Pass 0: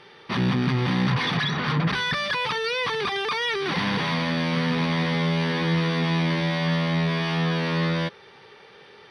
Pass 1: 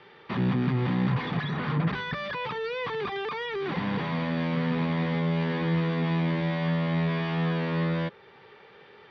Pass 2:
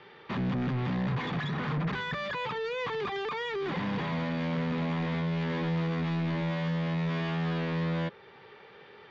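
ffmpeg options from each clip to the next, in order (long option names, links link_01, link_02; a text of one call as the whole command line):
ffmpeg -i in.wav -filter_complex "[0:a]acrossover=split=290|850[link_01][link_02][link_03];[link_03]alimiter=limit=-24dB:level=0:latency=1:release=460[link_04];[link_01][link_02][link_04]amix=inputs=3:normalize=0,lowpass=3000,volume=-2.5dB" out.wav
ffmpeg -i in.wav -af "asoftclip=type=tanh:threshold=-26dB,aresample=16000,aresample=44100" out.wav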